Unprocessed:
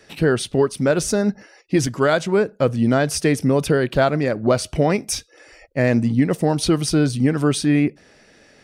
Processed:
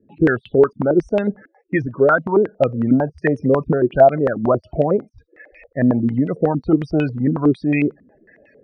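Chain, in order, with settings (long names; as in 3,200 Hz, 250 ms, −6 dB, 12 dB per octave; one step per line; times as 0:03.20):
spectral peaks only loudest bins 32
low-pass on a step sequencer 11 Hz 250–2,700 Hz
level −2.5 dB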